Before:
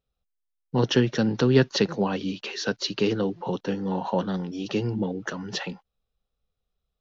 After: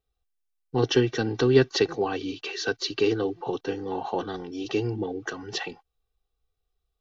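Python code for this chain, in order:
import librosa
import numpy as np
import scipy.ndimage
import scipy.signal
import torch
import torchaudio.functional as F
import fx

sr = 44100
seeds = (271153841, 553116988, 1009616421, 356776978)

y = x + 0.81 * np.pad(x, (int(2.6 * sr / 1000.0), 0))[:len(x)]
y = y * librosa.db_to_amplitude(-2.5)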